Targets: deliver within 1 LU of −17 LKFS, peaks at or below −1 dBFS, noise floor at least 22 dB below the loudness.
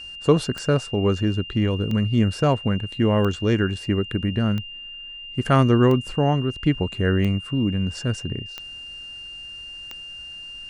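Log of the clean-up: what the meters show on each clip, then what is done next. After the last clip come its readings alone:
number of clicks 8; interfering tone 2,800 Hz; level of the tone −35 dBFS; integrated loudness −22.0 LKFS; sample peak −4.5 dBFS; target loudness −17.0 LKFS
→ click removal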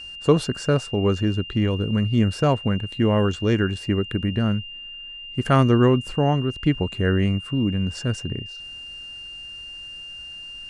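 number of clicks 0; interfering tone 2,800 Hz; level of the tone −35 dBFS
→ notch filter 2,800 Hz, Q 30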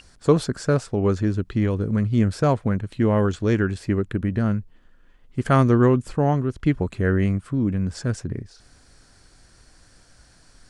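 interfering tone none found; integrated loudness −22.5 LKFS; sample peak −4.5 dBFS; target loudness −17.0 LKFS
→ level +5.5 dB
brickwall limiter −1 dBFS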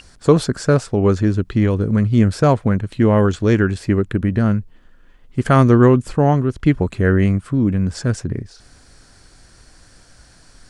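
integrated loudness −17.0 LKFS; sample peak −1.0 dBFS; background noise floor −49 dBFS

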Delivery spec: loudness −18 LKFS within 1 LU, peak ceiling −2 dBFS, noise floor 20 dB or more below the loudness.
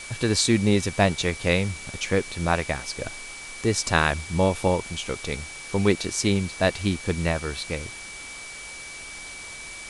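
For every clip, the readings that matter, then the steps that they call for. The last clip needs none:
interfering tone 2,300 Hz; level of the tone −39 dBFS; background noise floor −39 dBFS; target noise floor −45 dBFS; integrated loudness −24.5 LKFS; sample peak −4.5 dBFS; target loudness −18.0 LKFS
→ notch filter 2,300 Hz, Q 30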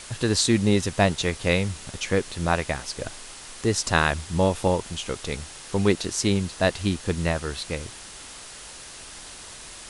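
interfering tone none found; background noise floor −42 dBFS; target noise floor −45 dBFS
→ broadband denoise 6 dB, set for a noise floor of −42 dBFS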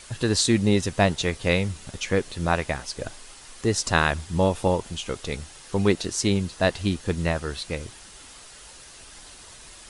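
background noise floor −46 dBFS; integrated loudness −25.0 LKFS; sample peak −4.5 dBFS; target loudness −18.0 LKFS
→ level +7 dB
brickwall limiter −2 dBFS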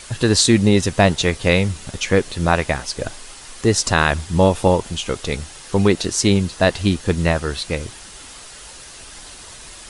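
integrated loudness −18.5 LKFS; sample peak −2.0 dBFS; background noise floor −39 dBFS

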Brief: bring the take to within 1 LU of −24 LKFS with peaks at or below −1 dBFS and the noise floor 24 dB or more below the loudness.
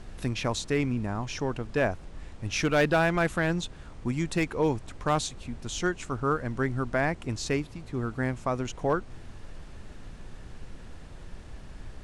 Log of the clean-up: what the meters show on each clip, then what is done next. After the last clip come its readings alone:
share of clipped samples 0.3%; peaks flattened at −16.5 dBFS; background noise floor −45 dBFS; target noise floor −53 dBFS; integrated loudness −29.0 LKFS; sample peak −16.5 dBFS; target loudness −24.0 LKFS
→ clipped peaks rebuilt −16.5 dBFS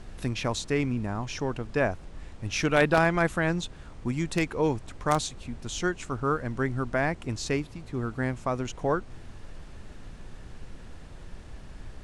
share of clipped samples 0.0%; background noise floor −45 dBFS; target noise floor −53 dBFS
→ noise reduction from a noise print 8 dB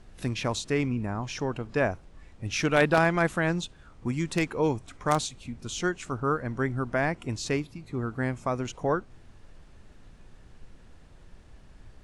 background noise floor −53 dBFS; integrated loudness −28.5 LKFS; sample peak −7.5 dBFS; target loudness −24.0 LKFS
→ level +4.5 dB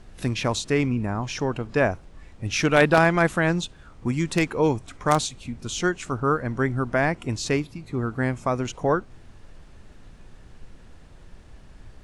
integrated loudness −24.0 LKFS; sample peak −3.0 dBFS; background noise floor −48 dBFS

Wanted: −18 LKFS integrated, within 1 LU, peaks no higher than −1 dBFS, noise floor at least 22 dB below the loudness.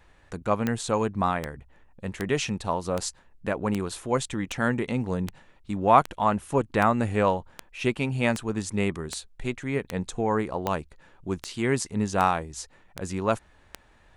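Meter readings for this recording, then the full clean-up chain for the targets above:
number of clicks 18; integrated loudness −27.0 LKFS; sample peak −5.0 dBFS; target loudness −18.0 LKFS
→ click removal
level +9 dB
brickwall limiter −1 dBFS

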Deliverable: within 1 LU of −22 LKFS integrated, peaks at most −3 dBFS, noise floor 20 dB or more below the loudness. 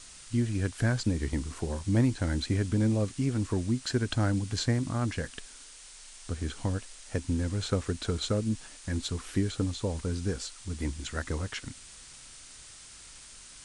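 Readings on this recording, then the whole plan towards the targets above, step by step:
background noise floor −50 dBFS; target noise floor −51 dBFS; integrated loudness −31.0 LKFS; sample peak −14.0 dBFS; target loudness −22.0 LKFS
→ broadband denoise 6 dB, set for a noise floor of −50 dBFS
level +9 dB

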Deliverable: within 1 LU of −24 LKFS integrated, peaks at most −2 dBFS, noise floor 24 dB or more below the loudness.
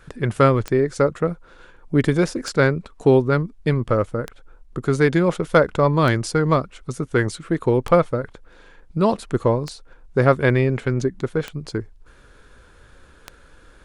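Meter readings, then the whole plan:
number of clicks 8; integrated loudness −20.5 LKFS; sample peak −2.0 dBFS; target loudness −24.0 LKFS
→ click removal
level −3.5 dB

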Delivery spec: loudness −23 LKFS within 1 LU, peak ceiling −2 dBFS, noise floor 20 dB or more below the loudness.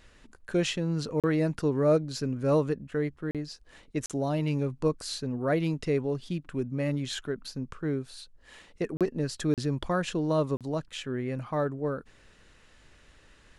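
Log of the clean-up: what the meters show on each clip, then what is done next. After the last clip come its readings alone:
number of dropouts 6; longest dropout 37 ms; integrated loudness −30.0 LKFS; sample peak −14.0 dBFS; target loudness −23.0 LKFS
→ repair the gap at 0:01.20/0:03.31/0:04.06/0:08.97/0:09.54/0:10.57, 37 ms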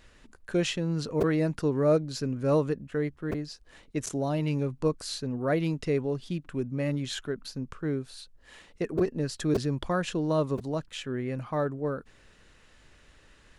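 number of dropouts 0; integrated loudness −30.0 LKFS; sample peak −14.0 dBFS; target loudness −23.0 LKFS
→ level +7 dB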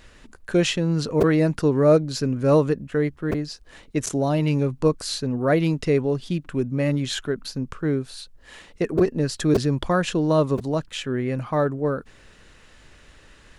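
integrated loudness −23.0 LKFS; sample peak −7.0 dBFS; background noise floor −52 dBFS

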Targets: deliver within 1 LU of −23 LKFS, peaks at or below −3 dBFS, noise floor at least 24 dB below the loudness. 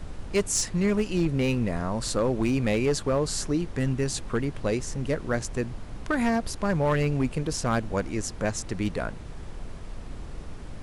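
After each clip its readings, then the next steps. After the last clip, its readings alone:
share of clipped samples 1.0%; peaks flattened at −17.5 dBFS; background noise floor −39 dBFS; target noise floor −52 dBFS; integrated loudness −27.5 LKFS; sample peak −17.5 dBFS; target loudness −23.0 LKFS
→ clipped peaks rebuilt −17.5 dBFS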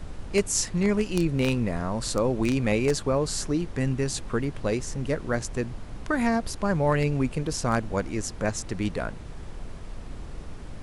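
share of clipped samples 0.0%; background noise floor −39 dBFS; target noise floor −51 dBFS
→ noise reduction from a noise print 12 dB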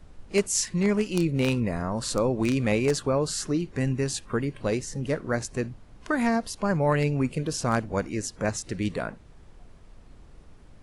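background noise floor −51 dBFS; integrated loudness −27.0 LKFS; sample peak −8.5 dBFS; target loudness −23.0 LKFS
→ level +4 dB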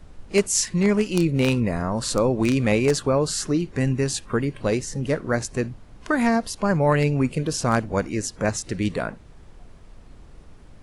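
integrated loudness −23.0 LKFS; sample peak −4.5 dBFS; background noise floor −47 dBFS

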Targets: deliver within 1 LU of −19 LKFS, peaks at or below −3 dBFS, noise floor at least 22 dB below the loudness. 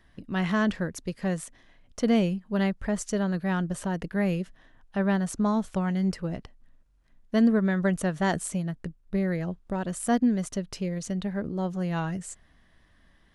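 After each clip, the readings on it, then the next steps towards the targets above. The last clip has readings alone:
integrated loudness −28.0 LKFS; sample peak −13.0 dBFS; target loudness −19.0 LKFS
→ level +9 dB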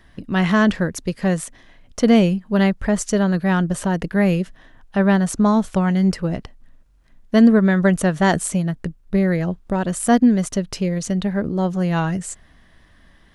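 integrated loudness −19.0 LKFS; sample peak −4.0 dBFS; background noise floor −52 dBFS

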